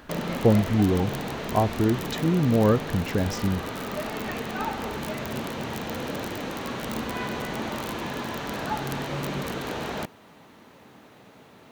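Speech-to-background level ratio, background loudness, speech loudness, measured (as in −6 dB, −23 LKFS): 7.0 dB, −31.5 LKFS, −24.5 LKFS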